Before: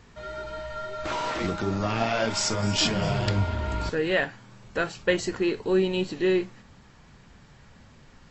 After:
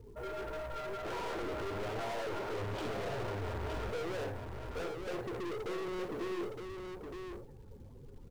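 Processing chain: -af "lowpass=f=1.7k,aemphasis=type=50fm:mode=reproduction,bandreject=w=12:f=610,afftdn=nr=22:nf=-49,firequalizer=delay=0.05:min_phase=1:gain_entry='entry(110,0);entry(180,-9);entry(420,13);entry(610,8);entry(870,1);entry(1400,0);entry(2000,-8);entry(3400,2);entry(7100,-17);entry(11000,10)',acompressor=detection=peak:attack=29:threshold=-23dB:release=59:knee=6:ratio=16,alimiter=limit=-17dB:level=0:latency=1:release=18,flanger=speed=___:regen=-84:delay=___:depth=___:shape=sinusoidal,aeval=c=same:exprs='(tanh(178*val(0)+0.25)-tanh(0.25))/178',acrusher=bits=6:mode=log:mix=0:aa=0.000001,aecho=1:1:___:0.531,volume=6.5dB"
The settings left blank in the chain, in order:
1.5, 2.1, 6.7, 915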